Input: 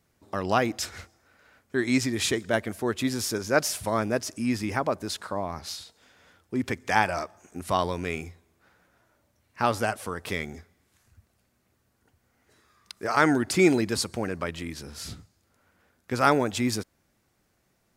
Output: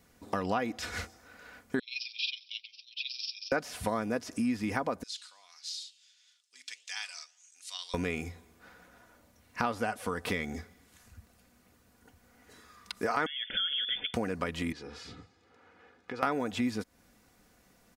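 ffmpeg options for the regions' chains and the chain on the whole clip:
ffmpeg -i in.wav -filter_complex "[0:a]asettb=1/sr,asplit=3[link_01][link_02][link_03];[link_01]atrim=end=1.794[link_04];[link_02]atrim=start=1.79:end=3.52,asetpts=PTS-STARTPTS,afade=type=in:duration=0.004:curve=qsin,afade=type=out:start_time=1.726:duration=0.004:curve=qsin,asuperpass=centerf=3700:order=20:qfactor=1.2,tremolo=f=22:d=0.667[link_05];[link_03]atrim=start=3.516[link_06];[link_04][link_05]acrossfade=duration=0.004:curve1=hsin:curve2=qsin[link_07];[link_07][link_06]acrossfade=duration=0.004:curve1=qsin:curve2=hsin,asettb=1/sr,asplit=3[link_08][link_09][link_10];[link_08]atrim=end=5.034[link_11];[link_09]atrim=start=5.03:end=7.94,asetpts=PTS-STARTPTS,afade=type=in:duration=0.004:curve=qsin,afade=type=out:start_time=2.906:duration=0.004:curve=qsin,flanger=delay=6.2:depth=7.3:regen=-89:speed=1.6:shape=sinusoidal,asuperpass=centerf=5400:order=4:qfactor=1.1[link_12];[link_10]atrim=start=7.936[link_13];[link_11][link_12]acrossfade=duration=0.004:curve1=hsin:curve2=qsin[link_14];[link_14][link_13]acrossfade=duration=0.004:curve1=qsin:curve2=hsin,asettb=1/sr,asplit=3[link_15][link_16][link_17];[link_15]atrim=end=13.264[link_18];[link_16]atrim=start=13.26:end=14.14,asetpts=PTS-STARTPTS,afade=type=in:duration=0.004:curve=qsin,afade=type=out:start_time=0.876:duration=0.004:curve=qsin,acompressor=threshold=-25dB:ratio=6:attack=3.2:release=140:knee=1:detection=peak,asuperstop=centerf=2600:order=20:qfactor=3.6,lowpass=frequency=3100:width_type=q:width=0.5098,lowpass=frequency=3100:width_type=q:width=0.6013,lowpass=frequency=3100:width_type=q:width=0.9,lowpass=frequency=3100:width_type=q:width=2.563,afreqshift=-3600[link_19];[link_17]atrim=start=14.136[link_20];[link_18][link_19]acrossfade=duration=0.004:curve1=hsin:curve2=qsin[link_21];[link_21][link_20]acrossfade=duration=0.004:curve1=qsin:curve2=hsin,asettb=1/sr,asplit=3[link_22][link_23][link_24];[link_22]atrim=end=14.724[link_25];[link_23]atrim=start=14.72:end=16.23,asetpts=PTS-STARTPTS,afade=type=in:duration=0.004:curve=qsin,afade=type=out:start_time=1.506:duration=0.004:curve=qsin,aecho=1:1:2.4:0.54,atrim=end_sample=66591,acompressor=threshold=-45dB:ratio=4:attack=3.2:release=140:knee=1:detection=peak,highpass=130,lowpass=3500[link_26];[link_24]atrim=start=16.226[link_27];[link_25][link_26]acrossfade=duration=0.004:curve1=hsin:curve2=qsin[link_28];[link_28][link_27]acrossfade=duration=0.004:curve1=qsin:curve2=hsin,acrossover=split=3600[link_29][link_30];[link_30]acompressor=threshold=-44dB:ratio=4:attack=1:release=60[link_31];[link_29][link_31]amix=inputs=2:normalize=0,aecho=1:1:4.1:0.44,acompressor=threshold=-36dB:ratio=4,volume=6dB" out.wav

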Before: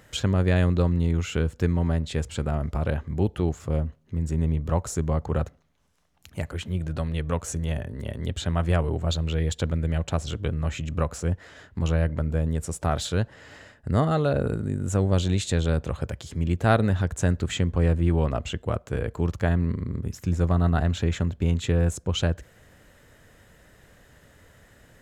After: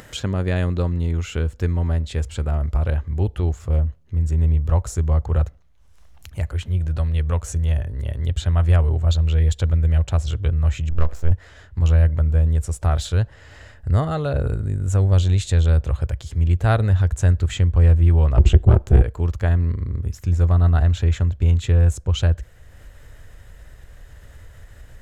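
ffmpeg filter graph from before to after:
ffmpeg -i in.wav -filter_complex "[0:a]asettb=1/sr,asplit=3[link_01][link_02][link_03];[link_01]atrim=end=10.904[link_04];[link_02]atrim=start=10.9:end=11.31,asetpts=PTS-STARTPTS,afade=type=in:duration=0.004:curve=qsin,afade=type=out:start_time=0.406:duration=0.004:curve=qsin,aemphasis=mode=reproduction:type=cd,bandreject=frequency=61.23:width_type=h:width=4,bandreject=frequency=122.46:width_type=h:width=4,bandreject=frequency=183.69:width_type=h:width=4,bandreject=frequency=244.92:width_type=h:width=4,bandreject=frequency=306.15:width_type=h:width=4,bandreject=frequency=367.38:width_type=h:width=4,bandreject=frequency=428.61:width_type=h:width=4,bandreject=frequency=489.84:width_type=h:width=4,bandreject=frequency=551.07:width_type=h:width=4,bandreject=frequency=612.3:width_type=h:width=4,bandreject=frequency=673.53:width_type=h:width=4,bandreject=frequency=734.76:width_type=h:width=4,bandreject=frequency=795.99:width_type=h:width=4,bandreject=frequency=857.22:width_type=h:width=4,bandreject=frequency=918.45:width_type=h:width=4,bandreject=frequency=979.68:width_type=h:width=4,aeval=exprs='max(val(0),0)':channel_layout=same[link_05];[link_03]atrim=start=11.306[link_06];[link_04][link_05]acrossfade=duration=0.004:curve1=hsin:curve2=qsin[link_07];[link_07][link_06]acrossfade=duration=0.004:curve1=qsin:curve2=hsin,asettb=1/sr,asplit=3[link_08][link_09][link_10];[link_08]atrim=end=18.374[link_11];[link_09]atrim=start=18.37:end=19.02,asetpts=PTS-STARTPTS,afade=type=in:duration=0.004:curve=qsin,afade=type=out:start_time=0.646:duration=0.004:curve=qsin,lowshelf=frequency=310:gain=12,acontrast=72,tremolo=f=280:d=0.919[link_12];[link_10]atrim=start=19.016[link_13];[link_11][link_12]acrossfade=duration=0.004:curve1=hsin:curve2=qsin[link_14];[link_14][link_13]acrossfade=duration=0.004:curve1=qsin:curve2=hsin,asubboost=boost=8.5:cutoff=70,acompressor=mode=upward:threshold=-35dB:ratio=2.5" out.wav

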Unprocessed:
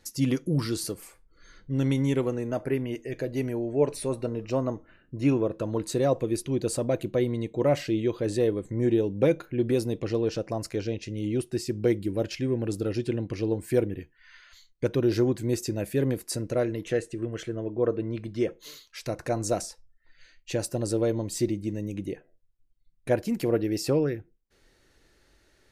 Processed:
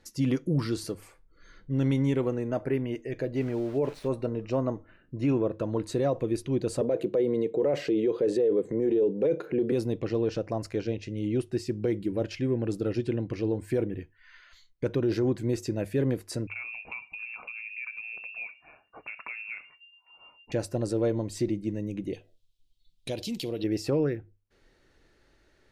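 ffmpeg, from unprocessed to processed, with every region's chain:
ffmpeg -i in.wav -filter_complex "[0:a]asettb=1/sr,asplit=3[link_01][link_02][link_03];[link_01]atrim=end=3.364[link_04];[link_02]atrim=start=3.36:end=4.08,asetpts=PTS-STARTPTS,afade=type=in:duration=0.004:curve=qsin,afade=type=out:start_time=0.716:duration=0.004:curve=qsin,lowpass=5400,aeval=exprs='val(0)*gte(abs(val(0)),0.00841)':channel_layout=same[link_05];[link_03]atrim=start=4.076[link_06];[link_04][link_05]acrossfade=duration=0.004:curve1=hsin:curve2=qsin[link_07];[link_07][link_06]acrossfade=duration=0.004:curve1=qsin:curve2=hsin,asettb=1/sr,asplit=3[link_08][link_09][link_10];[link_08]atrim=end=6.814[link_11];[link_09]atrim=start=6.81:end=9.72,asetpts=PTS-STARTPTS,afade=type=in:duration=0.004:curve=qsin,afade=type=out:start_time=2.906:duration=0.004:curve=qsin,highpass=frequency=140:width=0.5412,highpass=frequency=140:width=1.3066,equalizer=frequency=450:width=2.4:gain=14,acompressor=mode=upward:threshold=-28dB:ratio=2.5:attack=3.2:release=140:knee=2.83:detection=peak[link_12];[link_10]atrim=start=9.716[link_13];[link_11][link_12]acrossfade=duration=0.004:curve1=hsin:curve2=qsin[link_14];[link_14][link_13]acrossfade=duration=0.004:curve1=qsin:curve2=hsin,asettb=1/sr,asplit=3[link_15][link_16][link_17];[link_15]atrim=end=16.474[link_18];[link_16]atrim=start=16.47:end=20.52,asetpts=PTS-STARTPTS,afade=type=in:duration=0.004:curve=qsin,afade=type=out:start_time=4.046:duration=0.004:curve=qsin,lowpass=frequency=2400:width_type=q:width=0.5098,lowpass=frequency=2400:width_type=q:width=0.6013,lowpass=frequency=2400:width_type=q:width=0.9,lowpass=frequency=2400:width_type=q:width=2.563,afreqshift=-2800,acompressor=threshold=-33dB:ratio=5:attack=3.2:release=140:knee=1:detection=peak[link_19];[link_17]atrim=start=20.516[link_20];[link_18][link_19]acrossfade=duration=0.004:curve1=hsin:curve2=qsin[link_21];[link_21][link_20]acrossfade=duration=0.004:curve1=qsin:curve2=hsin,asettb=1/sr,asplit=3[link_22][link_23][link_24];[link_22]atrim=end=22.134[link_25];[link_23]atrim=start=22.13:end=23.64,asetpts=PTS-STARTPTS,afade=type=in:duration=0.004:curve=qsin,afade=type=out:start_time=1.506:duration=0.004:curve=qsin,highshelf=frequency=2400:width_type=q:width=3:gain=13.5,acompressor=threshold=-29dB:ratio=4:attack=3.2:release=140:knee=1:detection=peak[link_26];[link_24]atrim=start=23.636[link_27];[link_25][link_26]acrossfade=duration=0.004:curve1=hsin:curve2=qsin[link_28];[link_28][link_27]acrossfade=duration=0.004:curve1=qsin:curve2=hsin,lowpass=frequency=3200:poles=1,bandreject=frequency=50:width_type=h:width=6,bandreject=frequency=100:width_type=h:width=6,alimiter=limit=-18dB:level=0:latency=1:release=18" out.wav

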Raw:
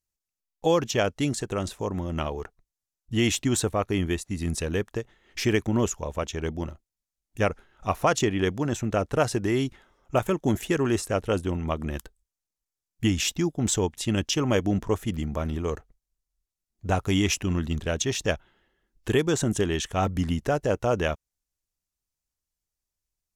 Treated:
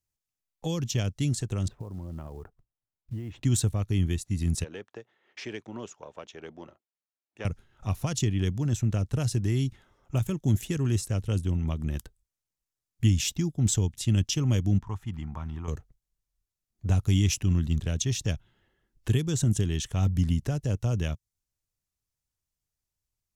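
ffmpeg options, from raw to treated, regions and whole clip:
ffmpeg -i in.wav -filter_complex "[0:a]asettb=1/sr,asplit=3[link_01][link_02][link_03];[link_01]atrim=end=1.684[link_04];[link_02]atrim=start=1.68:end=3.43,asetpts=PTS-STARTPTS,afade=type=in:duration=0.004:curve=qsin,afade=type=out:start_time=1.746:duration=0.004:curve=qsin,lowpass=1300,acrusher=bits=7:mode=log:mix=0:aa=0.000001,acompressor=threshold=-36dB:ratio=6:attack=3.2:release=140:knee=1:detection=peak[link_05];[link_03]atrim=start=3.426[link_06];[link_04][link_05]acrossfade=duration=0.004:curve1=hsin:curve2=qsin[link_07];[link_07][link_06]acrossfade=duration=0.004:curve1=qsin:curve2=hsin,asettb=1/sr,asplit=3[link_08][link_09][link_10];[link_08]atrim=end=4.644[link_11];[link_09]atrim=start=4.64:end=7.45,asetpts=PTS-STARTPTS,afade=type=in:duration=0.004:curve=qsin,afade=type=out:start_time=2.806:duration=0.004:curve=qsin,aeval=exprs='if(lt(val(0),0),0.708*val(0),val(0))':channel_layout=same,highpass=440,lowpass=6800,aemphasis=mode=reproduction:type=75kf[link_12];[link_10]atrim=start=7.446[link_13];[link_11][link_12]acrossfade=duration=0.004:curve1=hsin:curve2=qsin[link_14];[link_14][link_13]acrossfade=duration=0.004:curve1=qsin:curve2=hsin,asettb=1/sr,asplit=3[link_15][link_16][link_17];[link_15]atrim=end=14.784[link_18];[link_16]atrim=start=14.78:end=15.68,asetpts=PTS-STARTPTS,afade=type=in:duration=0.004:curve=qsin,afade=type=out:start_time=0.896:duration=0.004:curve=qsin,lowpass=frequency=1400:poles=1,lowshelf=frequency=700:width_type=q:width=3:gain=-7.5[link_19];[link_17]atrim=start=15.676[link_20];[link_18][link_19]acrossfade=duration=0.004:curve1=hsin:curve2=qsin[link_21];[link_21][link_20]acrossfade=duration=0.004:curve1=qsin:curve2=hsin,equalizer=frequency=110:width_type=o:width=1.1:gain=8.5,acrossover=split=250|3000[link_22][link_23][link_24];[link_23]acompressor=threshold=-43dB:ratio=2.5[link_25];[link_22][link_25][link_24]amix=inputs=3:normalize=0,volume=-1.5dB" out.wav

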